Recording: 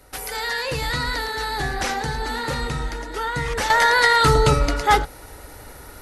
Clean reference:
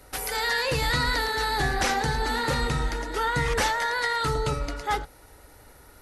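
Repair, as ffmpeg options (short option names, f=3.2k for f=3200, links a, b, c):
-af "asetnsamples=n=441:p=0,asendcmd='3.7 volume volume -10.5dB',volume=0dB"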